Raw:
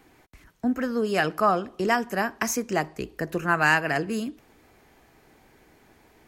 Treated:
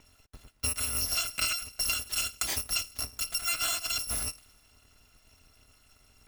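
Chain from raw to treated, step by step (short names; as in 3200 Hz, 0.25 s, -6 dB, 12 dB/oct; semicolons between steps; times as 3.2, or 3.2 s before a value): FFT order left unsorted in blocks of 256 samples; high shelf 10000 Hz -10.5 dB; compressor 6:1, threshold -31 dBFS, peak gain reduction 11 dB; mismatched tape noise reduction decoder only; gain +4 dB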